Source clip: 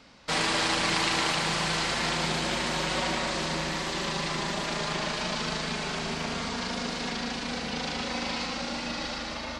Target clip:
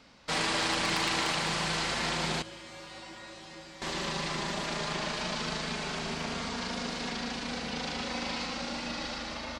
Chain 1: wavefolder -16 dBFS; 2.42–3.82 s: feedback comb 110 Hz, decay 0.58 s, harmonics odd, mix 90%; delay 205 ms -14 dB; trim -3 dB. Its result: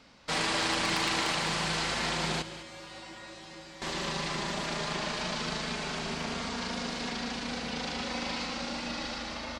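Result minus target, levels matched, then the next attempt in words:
echo-to-direct +10.5 dB
wavefolder -16 dBFS; 2.42–3.82 s: feedback comb 110 Hz, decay 0.58 s, harmonics odd, mix 90%; delay 205 ms -24.5 dB; trim -3 dB

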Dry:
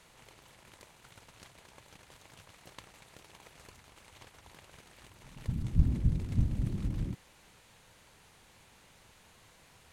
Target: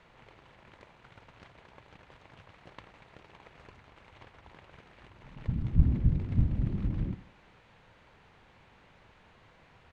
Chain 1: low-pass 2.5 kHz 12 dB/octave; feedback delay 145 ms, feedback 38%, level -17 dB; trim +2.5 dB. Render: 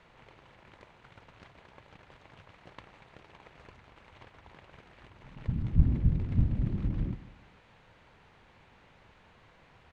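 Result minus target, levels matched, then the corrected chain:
echo 63 ms late
low-pass 2.5 kHz 12 dB/octave; feedback delay 82 ms, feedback 38%, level -17 dB; trim +2.5 dB

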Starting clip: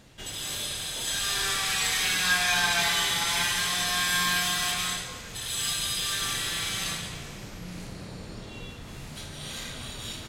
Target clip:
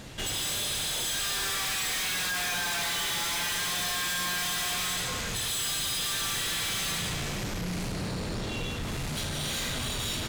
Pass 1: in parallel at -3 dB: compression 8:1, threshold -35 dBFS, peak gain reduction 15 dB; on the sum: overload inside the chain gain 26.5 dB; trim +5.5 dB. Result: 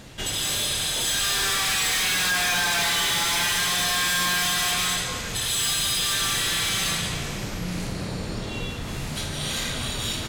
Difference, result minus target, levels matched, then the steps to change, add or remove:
overload inside the chain: distortion -5 dB
change: overload inside the chain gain 35 dB

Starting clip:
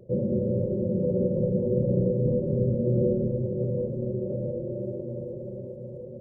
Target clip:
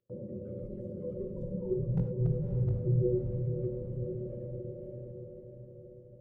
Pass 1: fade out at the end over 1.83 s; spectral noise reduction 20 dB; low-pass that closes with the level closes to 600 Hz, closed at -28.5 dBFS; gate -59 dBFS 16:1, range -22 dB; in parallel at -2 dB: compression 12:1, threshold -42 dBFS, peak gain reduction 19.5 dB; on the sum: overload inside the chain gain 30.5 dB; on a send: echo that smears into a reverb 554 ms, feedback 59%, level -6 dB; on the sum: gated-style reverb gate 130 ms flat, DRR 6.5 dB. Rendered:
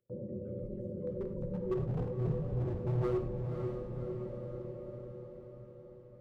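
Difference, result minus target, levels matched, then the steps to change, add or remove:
overload inside the chain: distortion +17 dB
change: overload inside the chain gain 20.5 dB

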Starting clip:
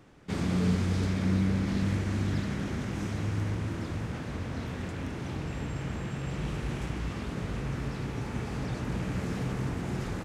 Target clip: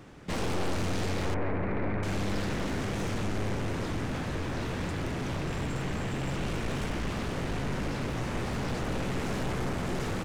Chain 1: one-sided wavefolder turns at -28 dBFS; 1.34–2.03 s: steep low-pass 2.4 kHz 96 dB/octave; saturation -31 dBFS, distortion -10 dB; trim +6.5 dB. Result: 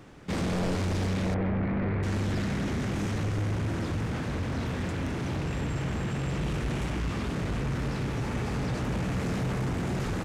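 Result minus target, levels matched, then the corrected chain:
one-sided wavefolder: distortion -11 dB
one-sided wavefolder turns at -36.5 dBFS; 1.34–2.03 s: steep low-pass 2.4 kHz 96 dB/octave; saturation -31 dBFS, distortion -8 dB; trim +6.5 dB

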